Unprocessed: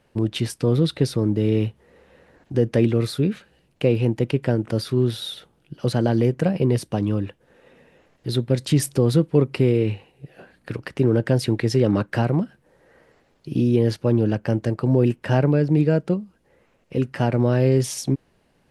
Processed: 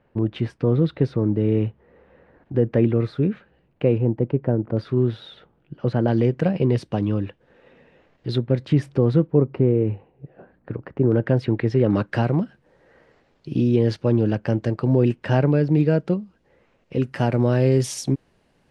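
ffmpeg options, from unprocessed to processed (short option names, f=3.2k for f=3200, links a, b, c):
-af "asetnsamples=n=441:p=0,asendcmd='3.98 lowpass f 1000;4.77 lowpass f 2000;6.08 lowpass f 4100;8.38 lowpass f 2100;9.27 lowpass f 1100;11.12 lowpass f 2300;11.9 lowpass f 5600;17.04 lowpass f 10000',lowpass=1.9k"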